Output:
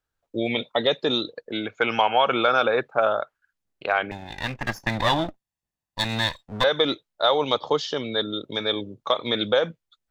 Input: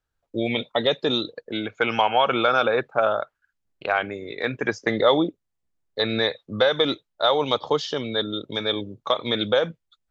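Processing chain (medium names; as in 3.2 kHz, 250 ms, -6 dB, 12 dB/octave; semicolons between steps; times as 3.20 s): 4.11–6.64 s: comb filter that takes the minimum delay 1.1 ms; bass shelf 130 Hz -5 dB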